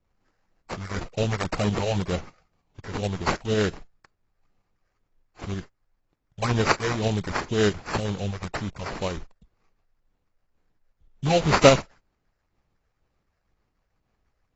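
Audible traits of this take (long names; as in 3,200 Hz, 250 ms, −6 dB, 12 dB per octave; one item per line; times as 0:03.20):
phaser sweep stages 6, 2 Hz, lowest notch 250–4,700 Hz
aliases and images of a low sample rate 3,400 Hz, jitter 20%
tremolo saw up 6.5 Hz, depth 40%
AAC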